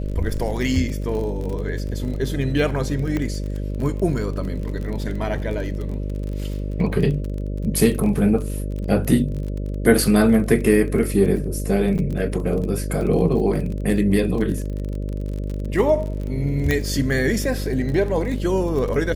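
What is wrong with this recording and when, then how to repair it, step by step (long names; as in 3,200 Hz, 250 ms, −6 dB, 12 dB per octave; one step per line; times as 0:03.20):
mains buzz 50 Hz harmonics 12 −26 dBFS
surface crackle 31 per second −28 dBFS
0:03.17: click −13 dBFS
0:11.98–0:11.99: drop-out 6 ms
0:16.71: click −7 dBFS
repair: click removal
hum removal 50 Hz, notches 12
repair the gap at 0:11.98, 6 ms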